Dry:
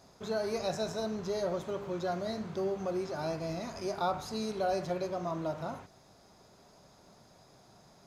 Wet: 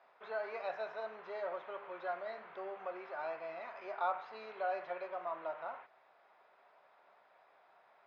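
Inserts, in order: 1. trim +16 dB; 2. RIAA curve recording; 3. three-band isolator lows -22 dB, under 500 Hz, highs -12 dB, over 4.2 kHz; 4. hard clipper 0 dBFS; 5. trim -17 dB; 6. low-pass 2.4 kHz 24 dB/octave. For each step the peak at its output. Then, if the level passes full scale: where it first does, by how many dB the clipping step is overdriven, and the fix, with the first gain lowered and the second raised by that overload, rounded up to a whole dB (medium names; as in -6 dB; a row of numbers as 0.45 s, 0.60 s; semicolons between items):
-4.5 dBFS, -4.5 dBFS, -5.0 dBFS, -5.0 dBFS, -22.0 dBFS, -23.0 dBFS; nothing clips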